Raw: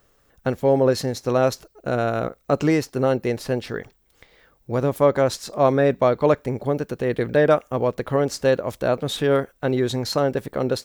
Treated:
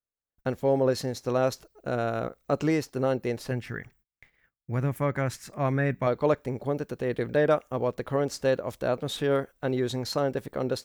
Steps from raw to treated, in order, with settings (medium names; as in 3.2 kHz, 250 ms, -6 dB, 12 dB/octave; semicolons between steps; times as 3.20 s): gate -53 dBFS, range -33 dB; 3.51–6.07 s: graphic EQ 125/500/1000/2000/4000 Hz +6/-8/-3/+8/-10 dB; trim -6 dB